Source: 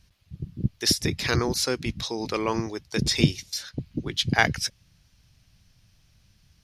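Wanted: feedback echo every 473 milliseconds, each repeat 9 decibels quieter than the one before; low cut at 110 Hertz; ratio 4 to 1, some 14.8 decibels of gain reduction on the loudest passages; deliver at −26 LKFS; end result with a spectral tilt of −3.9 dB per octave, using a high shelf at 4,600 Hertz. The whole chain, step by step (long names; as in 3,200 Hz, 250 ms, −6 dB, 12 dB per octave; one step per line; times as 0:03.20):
high-pass filter 110 Hz
high-shelf EQ 4,600 Hz −5.5 dB
downward compressor 4 to 1, threshold −33 dBFS
repeating echo 473 ms, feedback 35%, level −9 dB
level +10.5 dB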